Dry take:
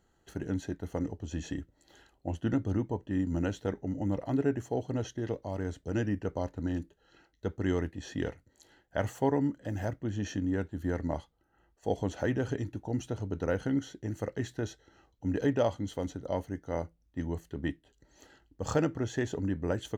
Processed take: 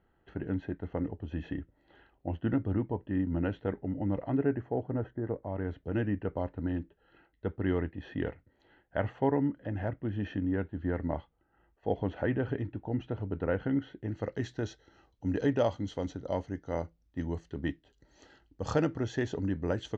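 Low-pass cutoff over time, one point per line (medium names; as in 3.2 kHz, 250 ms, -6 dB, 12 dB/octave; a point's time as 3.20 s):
low-pass 24 dB/octave
4.27 s 2.8 kHz
5.24 s 1.5 kHz
5.71 s 2.9 kHz
13.98 s 2.9 kHz
14.39 s 5.8 kHz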